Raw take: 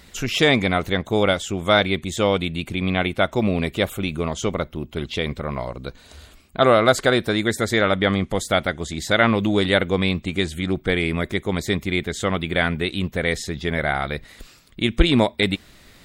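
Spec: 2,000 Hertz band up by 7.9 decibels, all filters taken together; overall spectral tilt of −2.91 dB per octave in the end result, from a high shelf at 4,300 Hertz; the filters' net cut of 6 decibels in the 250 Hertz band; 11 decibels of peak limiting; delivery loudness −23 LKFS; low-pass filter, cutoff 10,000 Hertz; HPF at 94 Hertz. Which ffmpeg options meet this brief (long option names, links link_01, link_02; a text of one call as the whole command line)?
ffmpeg -i in.wav -af "highpass=94,lowpass=10000,equalizer=frequency=250:width_type=o:gain=-8.5,equalizer=frequency=2000:width_type=o:gain=8,highshelf=frequency=4300:gain=8,volume=-1dB,alimiter=limit=-9.5dB:level=0:latency=1" out.wav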